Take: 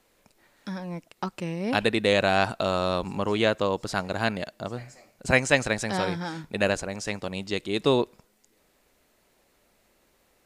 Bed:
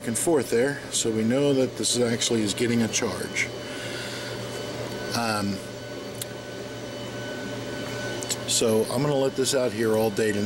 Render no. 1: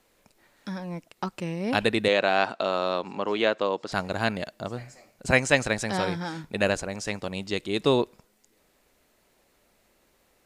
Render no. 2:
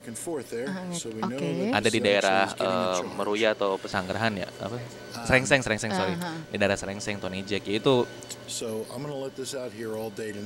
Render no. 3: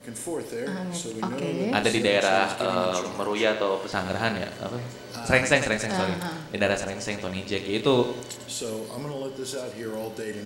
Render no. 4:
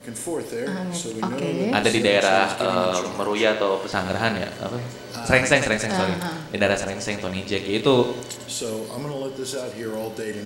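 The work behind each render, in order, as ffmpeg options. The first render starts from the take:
-filter_complex "[0:a]asettb=1/sr,asplit=3[a][b][c];[a]atrim=end=2.084[d];[b]atrim=start=2.08:end=3.92,asetpts=PTS-STARTPTS,afade=t=in:d=0.004:c=qsin,afade=t=out:st=1.836:d=0.004:c=qsin,highpass=270,lowpass=4.7k[e];[c]atrim=start=3.916[f];[d][e]acrossfade=d=0.004:c1=hsin:c2=qsin[g];[g][f]acrossfade=d=0.004:c1=qsin:c2=hsin"
-filter_complex "[1:a]volume=-10.5dB[a];[0:a][a]amix=inputs=2:normalize=0"
-filter_complex "[0:a]asplit=2[a][b];[b]adelay=33,volume=-8.5dB[c];[a][c]amix=inputs=2:normalize=0,aecho=1:1:97|194|291|388:0.282|0.121|0.0521|0.0224"
-af "volume=3.5dB,alimiter=limit=-2dB:level=0:latency=1"

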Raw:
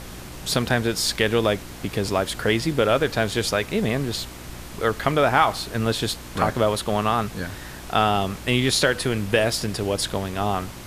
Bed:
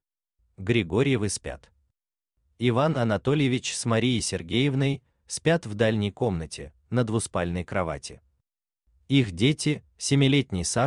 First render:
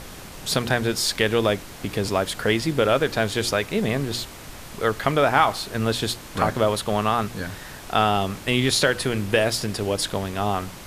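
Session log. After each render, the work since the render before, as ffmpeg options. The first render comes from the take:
-af "bandreject=f=60:t=h:w=4,bandreject=f=120:t=h:w=4,bandreject=f=180:t=h:w=4,bandreject=f=240:t=h:w=4,bandreject=f=300:t=h:w=4,bandreject=f=360:t=h:w=4"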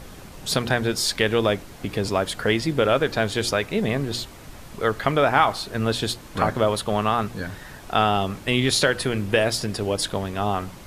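-af "afftdn=nr=6:nf=-40"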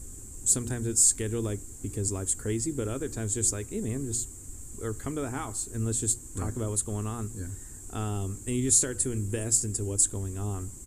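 -af "firequalizer=gain_entry='entry(100,0);entry(160,-15);entry(250,-5);entry(380,-7);entry(590,-22);entry(1000,-19);entry(3600,-22);entry(5200,-13);entry(7500,15);entry(11000,-3)':delay=0.05:min_phase=1"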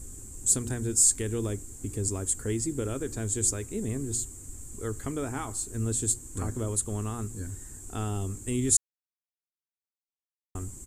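-filter_complex "[0:a]asplit=3[a][b][c];[a]atrim=end=8.77,asetpts=PTS-STARTPTS,afade=t=out:st=8.766:d=0.004:c=hsin[d];[b]atrim=start=8.77:end=10.55,asetpts=PTS-STARTPTS,volume=0[e];[c]atrim=start=10.55,asetpts=PTS-STARTPTS,afade=t=in:d=0.004:c=hsin[f];[d][e][f]concat=n=3:v=0:a=1"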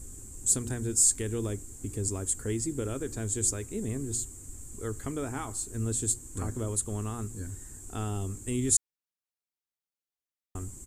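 -af "volume=-1.5dB"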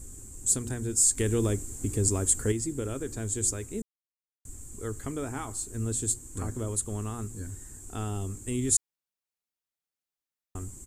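-filter_complex "[0:a]asettb=1/sr,asplit=3[a][b][c];[a]atrim=end=1.174[d];[b]atrim=start=1.17:end=2.52,asetpts=PTS-STARTPTS,afade=t=in:d=0.004:c=qsin,afade=t=out:st=1.346:d=0.004:c=qsin,acontrast=46[e];[c]atrim=start=2.516[f];[d][e]acrossfade=d=0.004:c1=hsin:c2=qsin[g];[g][f]acrossfade=d=0.004:c1=qsin:c2=hsin,asplit=3[h][i][j];[h]atrim=end=3.82,asetpts=PTS-STARTPTS,afade=t=out:st=3.816:d=0.004:c=hsin[k];[i]atrim=start=3.82:end=4.45,asetpts=PTS-STARTPTS,volume=0[l];[j]atrim=start=4.45,asetpts=PTS-STARTPTS,afade=t=in:d=0.004:c=hsin[m];[k][l][m]concat=n=3:v=0:a=1"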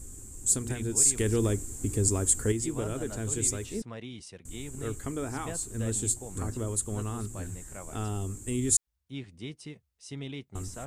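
-filter_complex "[1:a]volume=-18.5dB[a];[0:a][a]amix=inputs=2:normalize=0"

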